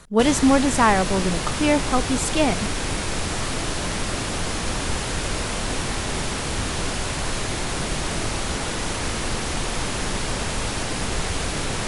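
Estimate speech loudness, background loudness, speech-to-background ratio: -21.0 LUFS, -26.0 LUFS, 5.0 dB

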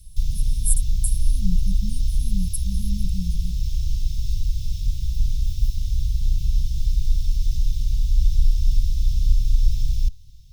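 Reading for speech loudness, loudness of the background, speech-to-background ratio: -31.5 LUFS, -26.0 LUFS, -5.5 dB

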